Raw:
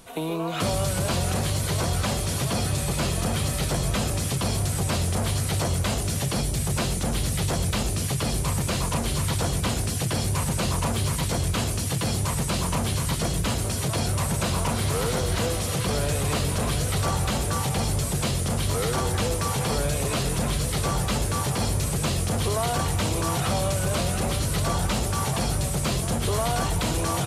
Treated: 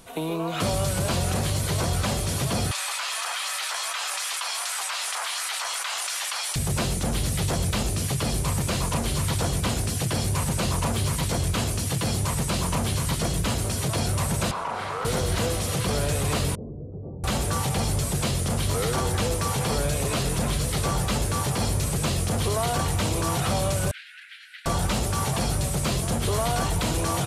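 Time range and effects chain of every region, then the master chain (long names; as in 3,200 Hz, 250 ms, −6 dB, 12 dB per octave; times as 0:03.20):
0:02.71–0:06.56: high-pass filter 990 Hz 24 dB per octave + high-shelf EQ 7,700 Hz −11.5 dB + envelope flattener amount 100%
0:14.51–0:15.05: resonant band-pass 1,100 Hz, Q 1.3 + flutter between parallel walls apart 7.1 metres, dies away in 0.36 s + envelope flattener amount 70%
0:16.55–0:17.24: linear delta modulator 32 kbit/s, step −31 dBFS + inverse Chebyshev low-pass filter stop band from 1,900 Hz, stop band 70 dB + spectral tilt +3.5 dB per octave
0:23.91–0:24.66: Butterworth high-pass 1,500 Hz 96 dB per octave + high-frequency loss of the air 490 metres
whole clip: no processing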